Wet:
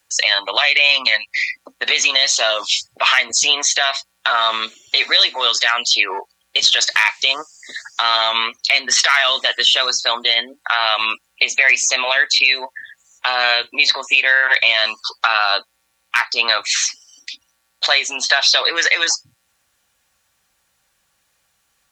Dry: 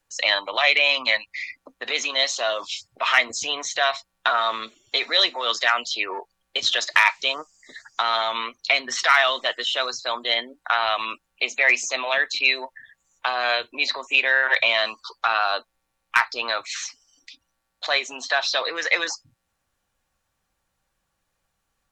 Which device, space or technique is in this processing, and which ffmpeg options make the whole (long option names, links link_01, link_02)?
mastering chain: -af "highpass=44,equalizer=frequency=1100:width_type=o:width=0.77:gain=-2.5,acompressor=threshold=-22dB:ratio=3,tiltshelf=frequency=910:gain=-5.5,asoftclip=type=hard:threshold=-4.5dB,alimiter=level_in=9.5dB:limit=-1dB:release=50:level=0:latency=1,volume=-1dB"